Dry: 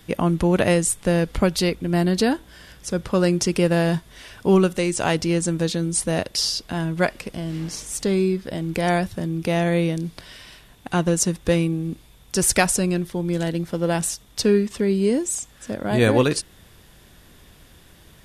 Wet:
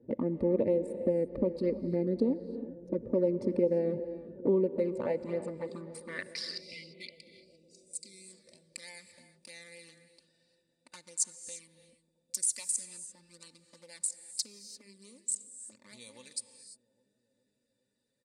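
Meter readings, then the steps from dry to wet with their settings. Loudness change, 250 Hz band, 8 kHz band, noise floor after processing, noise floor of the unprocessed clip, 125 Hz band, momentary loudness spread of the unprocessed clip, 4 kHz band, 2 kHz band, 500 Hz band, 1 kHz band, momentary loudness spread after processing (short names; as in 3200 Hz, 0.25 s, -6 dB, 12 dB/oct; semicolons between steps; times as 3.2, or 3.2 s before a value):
-11.0 dB, -14.0 dB, -10.0 dB, -79 dBFS, -51 dBFS, -19.5 dB, 10 LU, -16.5 dB, -20.5 dB, -10.5 dB, -24.0 dB, 21 LU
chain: Wiener smoothing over 41 samples; ripple EQ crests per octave 0.95, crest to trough 11 dB; compressor 5:1, threshold -24 dBFS, peak gain reduction 14 dB; envelope flanger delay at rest 8.9 ms, full sweep at -22 dBFS; bell 150 Hz +10 dB 0.65 oct; comb 3.4 ms, depth 47%; band-pass sweep 410 Hz -> 7100 Hz, 4.73–7.65; non-linear reverb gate 0.37 s rising, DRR 11 dB; spectral delete 6.61–8.26, 420–2000 Hz; on a send: analogue delay 0.405 s, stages 2048, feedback 68%, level -18 dB; on the sum: gain +4.5 dB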